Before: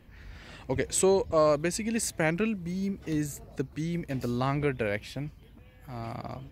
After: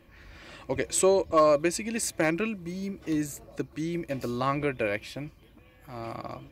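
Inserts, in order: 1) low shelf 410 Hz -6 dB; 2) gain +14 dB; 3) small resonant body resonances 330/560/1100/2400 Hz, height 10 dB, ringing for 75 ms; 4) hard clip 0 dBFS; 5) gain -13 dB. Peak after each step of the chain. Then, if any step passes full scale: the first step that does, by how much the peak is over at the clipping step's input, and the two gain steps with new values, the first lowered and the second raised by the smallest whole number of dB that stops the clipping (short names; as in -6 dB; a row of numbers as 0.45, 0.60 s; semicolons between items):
-13.0, +1.0, +3.5, 0.0, -13.0 dBFS; step 2, 3.5 dB; step 2 +10 dB, step 5 -9 dB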